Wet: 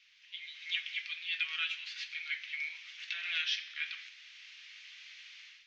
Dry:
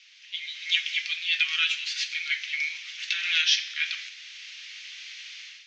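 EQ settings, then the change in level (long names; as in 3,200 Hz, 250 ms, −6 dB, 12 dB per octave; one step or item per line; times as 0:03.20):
spectral tilt −5 dB per octave
parametric band 1,200 Hz −4 dB 1.8 octaves
dynamic equaliser 7,100 Hz, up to −5 dB, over −52 dBFS, Q 1.2
−1.0 dB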